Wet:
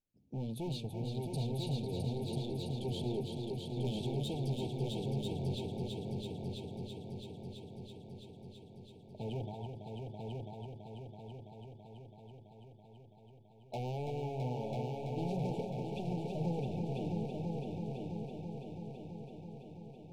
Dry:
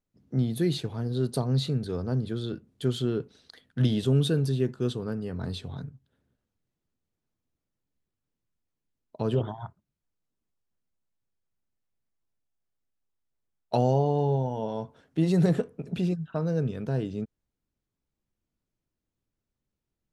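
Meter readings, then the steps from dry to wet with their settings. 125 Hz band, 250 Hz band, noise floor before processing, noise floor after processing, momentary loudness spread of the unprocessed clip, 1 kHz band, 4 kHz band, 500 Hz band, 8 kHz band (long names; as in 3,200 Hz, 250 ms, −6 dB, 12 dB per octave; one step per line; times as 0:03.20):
−9.0 dB, −9.5 dB, below −85 dBFS, −58 dBFS, 13 LU, −8.0 dB, −7.0 dB, −9.0 dB, can't be measured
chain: bass and treble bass 0 dB, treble −5 dB
gain into a clipping stage and back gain 28.5 dB
linear-phase brick-wall band-stop 930–2,200 Hz
on a send: echo machine with several playback heads 331 ms, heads all three, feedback 67%, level −7 dB
on the sum: level −7.5 dB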